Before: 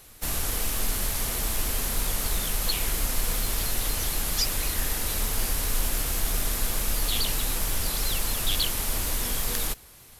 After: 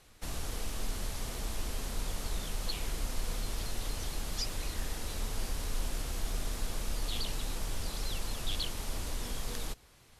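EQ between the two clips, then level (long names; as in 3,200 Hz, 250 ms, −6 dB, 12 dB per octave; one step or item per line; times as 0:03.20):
dynamic equaliser 1,900 Hz, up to −4 dB, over −42 dBFS, Q 0.77
high-frequency loss of the air 57 metres
−6.5 dB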